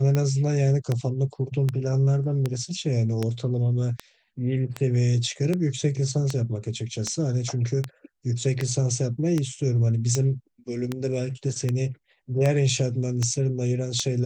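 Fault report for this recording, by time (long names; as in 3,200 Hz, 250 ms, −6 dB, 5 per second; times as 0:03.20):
scratch tick 78 rpm −12 dBFS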